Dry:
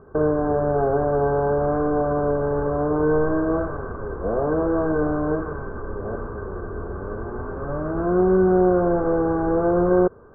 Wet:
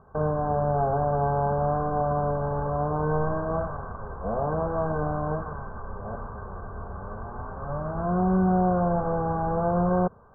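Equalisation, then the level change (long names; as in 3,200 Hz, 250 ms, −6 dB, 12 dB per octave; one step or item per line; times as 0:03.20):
drawn EQ curve 210 Hz 0 dB, 330 Hz −14 dB, 1,100 Hz +14 dB
dynamic equaliser 180 Hz, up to +6 dB, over −32 dBFS, Q 0.72
drawn EQ curve 760 Hz 0 dB, 1,200 Hz −13 dB, 2,000 Hz −19 dB
−4.5 dB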